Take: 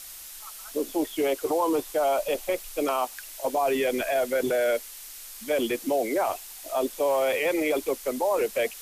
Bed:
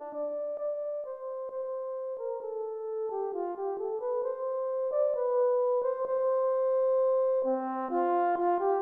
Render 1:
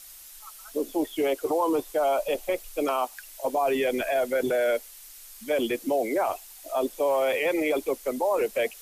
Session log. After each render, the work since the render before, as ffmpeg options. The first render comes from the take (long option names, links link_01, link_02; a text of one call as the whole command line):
ffmpeg -i in.wav -af "afftdn=noise_reduction=6:noise_floor=-43" out.wav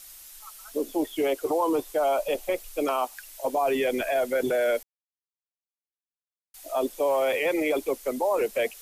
ffmpeg -i in.wav -filter_complex "[0:a]asplit=3[link_01][link_02][link_03];[link_01]atrim=end=4.83,asetpts=PTS-STARTPTS,afade=type=out:start_time=4.826:duration=0.004:curve=hsin[link_04];[link_02]atrim=start=4.83:end=6.54,asetpts=PTS-STARTPTS,volume=0[link_05];[link_03]atrim=start=6.54,asetpts=PTS-STARTPTS,afade=type=in:duration=0.004:curve=hsin[link_06];[link_04][link_05][link_06]concat=n=3:v=0:a=1" out.wav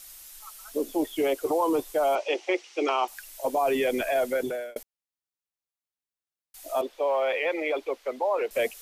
ffmpeg -i in.wav -filter_complex "[0:a]asettb=1/sr,asplit=3[link_01][link_02][link_03];[link_01]atrim=end=2.154[link_04];[link_02]atrim=start=2.15:end=3.08,asetpts=PTS-STARTPTS,afade=type=in:duration=0.004:curve=qsin,afade=type=out:start_time=0.926:duration=0.004:curve=qsin,highpass=frequency=320:width=0.5412,highpass=frequency=320:width=1.3066,equalizer=frequency=350:width_type=q:width=4:gain=10,equalizer=frequency=590:width_type=q:width=4:gain=-6,equalizer=frequency=840:width_type=q:width=4:gain=4,equalizer=frequency=2100:width_type=q:width=4:gain=7,equalizer=frequency=2900:width_type=q:width=4:gain=6,equalizer=frequency=5700:width_type=q:width=4:gain=5,lowpass=frequency=6100:width=0.5412,lowpass=frequency=6100:width=1.3066[link_05];[link_03]atrim=start=3.076[link_06];[link_04][link_05]acrossfade=duration=0.004:curve1=hsin:curve2=qsin[link_07];[link_07][link_06]acrossfade=duration=0.004:curve1=qsin:curve2=hsin,asettb=1/sr,asplit=3[link_08][link_09][link_10];[link_08]atrim=end=6.814[link_11];[link_09]atrim=start=6.81:end=8.51,asetpts=PTS-STARTPTS,afade=type=in:duration=0.004:curve=qsin,afade=type=out:start_time=1.696:duration=0.004:curve=qsin,acrossover=split=390 4500:gain=0.158 1 0.0891[link_12][link_13][link_14];[link_12][link_13][link_14]amix=inputs=3:normalize=0[link_15];[link_10]atrim=start=8.506[link_16];[link_11][link_15]acrossfade=duration=0.004:curve1=hsin:curve2=qsin[link_17];[link_17][link_16]acrossfade=duration=0.004:curve1=qsin:curve2=hsin,asplit=2[link_18][link_19];[link_18]atrim=end=4.76,asetpts=PTS-STARTPTS,afade=type=out:start_time=4.29:duration=0.47[link_20];[link_19]atrim=start=4.76,asetpts=PTS-STARTPTS,afade=type=in:duration=0.004:curve=hsin[link_21];[link_20][link_21]concat=n=2:v=0:a=1" out.wav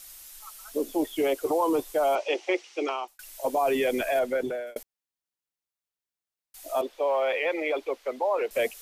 ffmpeg -i in.wav -filter_complex "[0:a]asettb=1/sr,asplit=3[link_01][link_02][link_03];[link_01]atrim=end=4.194[link_04];[link_02]atrim=start=4.19:end=4.67,asetpts=PTS-STARTPTS,afade=type=in:duration=0.004:curve=qsin,afade=type=out:start_time=0.476:duration=0.004:curve=qsin,lowpass=frequency=3300:poles=1[link_05];[link_03]atrim=start=4.666[link_06];[link_04][link_05]acrossfade=duration=0.004:curve1=hsin:curve2=qsin[link_07];[link_07][link_06]acrossfade=duration=0.004:curve1=qsin:curve2=hsin,asplit=2[link_08][link_09];[link_08]atrim=end=3.19,asetpts=PTS-STARTPTS,afade=type=out:start_time=2.52:duration=0.67:curve=qsin[link_10];[link_09]atrim=start=3.19,asetpts=PTS-STARTPTS,afade=type=in:duration=0.004:curve=hsin[link_11];[link_10][link_11]concat=n=2:v=0:a=1" out.wav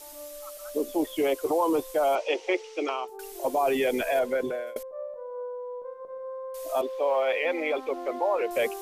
ffmpeg -i in.wav -i bed.wav -filter_complex "[1:a]volume=-9.5dB[link_01];[0:a][link_01]amix=inputs=2:normalize=0" out.wav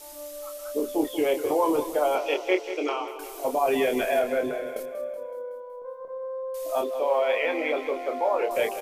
ffmpeg -i in.wav -filter_complex "[0:a]asplit=2[link_01][link_02];[link_02]adelay=27,volume=-6dB[link_03];[link_01][link_03]amix=inputs=2:normalize=0,aecho=1:1:187|374|561|748|935|1122:0.251|0.141|0.0788|0.0441|0.0247|0.0138" out.wav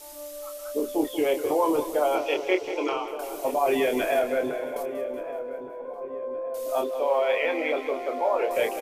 ffmpeg -i in.wav -filter_complex "[0:a]asplit=2[link_01][link_02];[link_02]adelay=1173,lowpass=frequency=1100:poles=1,volume=-11.5dB,asplit=2[link_03][link_04];[link_04]adelay=1173,lowpass=frequency=1100:poles=1,volume=0.52,asplit=2[link_05][link_06];[link_06]adelay=1173,lowpass=frequency=1100:poles=1,volume=0.52,asplit=2[link_07][link_08];[link_08]adelay=1173,lowpass=frequency=1100:poles=1,volume=0.52,asplit=2[link_09][link_10];[link_10]adelay=1173,lowpass=frequency=1100:poles=1,volume=0.52,asplit=2[link_11][link_12];[link_12]adelay=1173,lowpass=frequency=1100:poles=1,volume=0.52[link_13];[link_01][link_03][link_05][link_07][link_09][link_11][link_13]amix=inputs=7:normalize=0" out.wav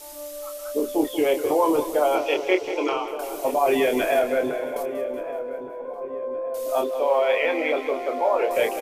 ffmpeg -i in.wav -af "volume=3dB" out.wav